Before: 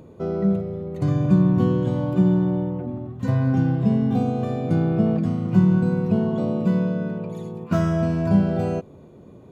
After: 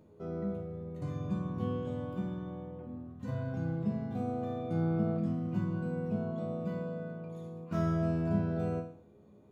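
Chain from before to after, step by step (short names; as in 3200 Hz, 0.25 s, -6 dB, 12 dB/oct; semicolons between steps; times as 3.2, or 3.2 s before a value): resonator bank C#2 minor, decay 0.47 s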